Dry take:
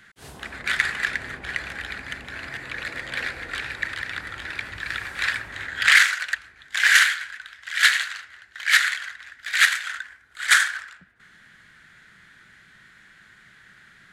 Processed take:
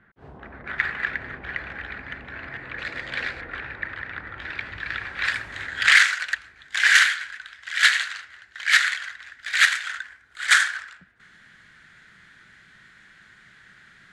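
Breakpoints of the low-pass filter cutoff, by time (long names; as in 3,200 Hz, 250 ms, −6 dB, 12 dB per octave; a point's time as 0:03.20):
1,100 Hz
from 0:00.78 2,200 Hz
from 0:02.79 4,900 Hz
from 0:03.41 1,800 Hz
from 0:04.40 3,500 Hz
from 0:05.25 8,700 Hz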